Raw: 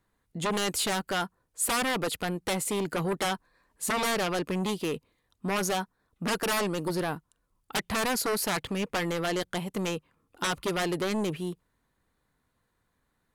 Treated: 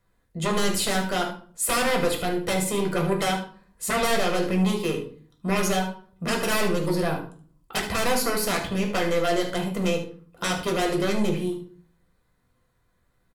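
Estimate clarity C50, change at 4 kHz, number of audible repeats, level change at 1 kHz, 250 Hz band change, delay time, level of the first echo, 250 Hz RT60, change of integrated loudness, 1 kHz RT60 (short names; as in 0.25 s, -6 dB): 7.5 dB, +3.5 dB, 1, +4.0 dB, +5.5 dB, 76 ms, -10.0 dB, 0.65 s, +4.5 dB, 0.45 s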